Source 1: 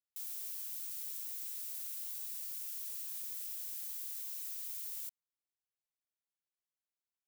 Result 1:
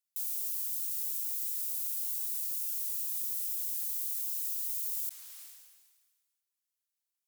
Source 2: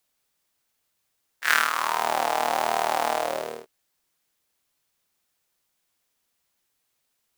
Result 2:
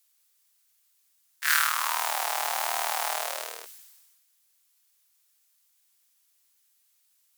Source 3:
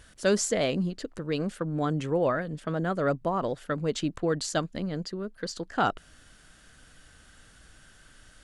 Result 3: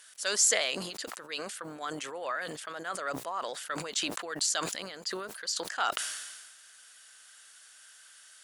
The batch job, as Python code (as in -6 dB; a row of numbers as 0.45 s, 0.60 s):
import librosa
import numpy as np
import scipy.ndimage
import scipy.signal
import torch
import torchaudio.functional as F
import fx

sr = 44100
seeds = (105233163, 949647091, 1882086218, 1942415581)

y = fx.octave_divider(x, sr, octaves=2, level_db=-5.0)
y = fx.high_shelf(y, sr, hz=4100.0, db=11.5)
y = fx.cheby_harmonics(y, sr, harmonics=(5,), levels_db=(-15,), full_scale_db=0.5)
y = scipy.signal.sosfilt(scipy.signal.butter(2, 980.0, 'highpass', fs=sr, output='sos'), y)
y = fx.sustainer(y, sr, db_per_s=39.0)
y = F.gain(torch.from_numpy(y), -8.0).numpy()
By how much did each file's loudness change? +8.0 LU, -2.0 LU, -2.5 LU